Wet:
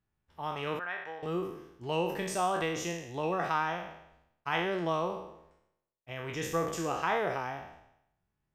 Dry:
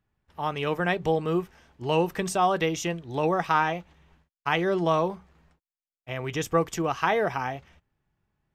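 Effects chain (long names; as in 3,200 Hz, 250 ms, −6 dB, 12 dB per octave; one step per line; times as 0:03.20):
peak hold with a decay on every bin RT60 0.80 s
0:00.79–0:01.23: resonant band-pass 1,400 Hz, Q 1.6
level −8.5 dB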